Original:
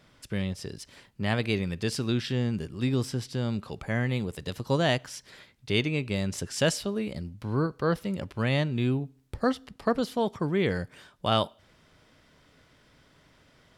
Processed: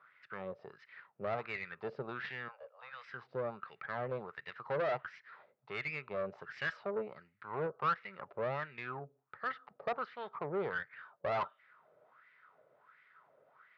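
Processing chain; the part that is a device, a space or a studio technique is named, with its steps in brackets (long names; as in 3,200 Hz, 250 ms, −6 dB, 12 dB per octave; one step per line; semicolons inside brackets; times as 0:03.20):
0:02.48–0:03.11: Butterworth high-pass 500 Hz 96 dB per octave
wah-wah guitar rig (LFO wah 1.4 Hz 550–2,100 Hz, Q 4.9; tube saturation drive 39 dB, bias 0.55; loudspeaker in its box 100–3,800 Hz, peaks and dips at 140 Hz +6 dB, 280 Hz −8 dB, 420 Hz +4 dB, 1,300 Hz +8 dB, 3,200 Hz −6 dB)
high-shelf EQ 6,600 Hz +4 dB
level +7 dB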